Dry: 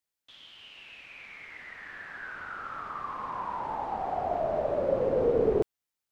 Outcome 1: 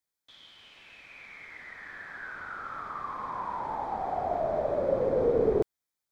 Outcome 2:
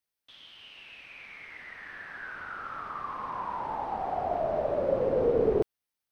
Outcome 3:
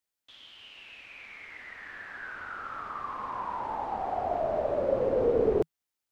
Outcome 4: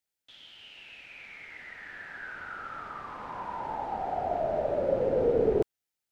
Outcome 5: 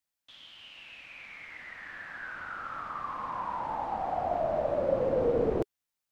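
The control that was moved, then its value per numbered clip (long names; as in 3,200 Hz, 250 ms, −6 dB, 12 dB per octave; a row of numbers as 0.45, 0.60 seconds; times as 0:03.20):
notch filter, centre frequency: 2,800, 7,100, 160, 1,100, 410 Hertz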